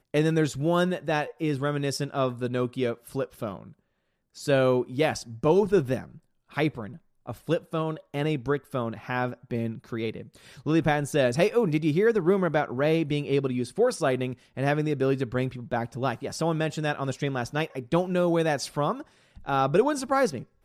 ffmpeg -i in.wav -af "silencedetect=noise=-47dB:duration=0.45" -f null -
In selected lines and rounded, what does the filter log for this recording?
silence_start: 3.72
silence_end: 4.36 | silence_duration: 0.63